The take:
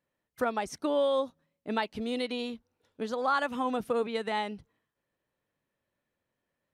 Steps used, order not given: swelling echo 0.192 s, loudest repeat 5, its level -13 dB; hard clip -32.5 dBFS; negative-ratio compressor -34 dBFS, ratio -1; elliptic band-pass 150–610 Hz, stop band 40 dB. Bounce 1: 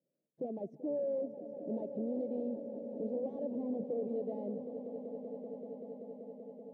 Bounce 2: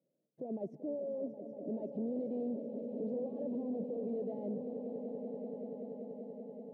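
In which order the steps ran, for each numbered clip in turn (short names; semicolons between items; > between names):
hard clip > elliptic band-pass > negative-ratio compressor > swelling echo; negative-ratio compressor > swelling echo > hard clip > elliptic band-pass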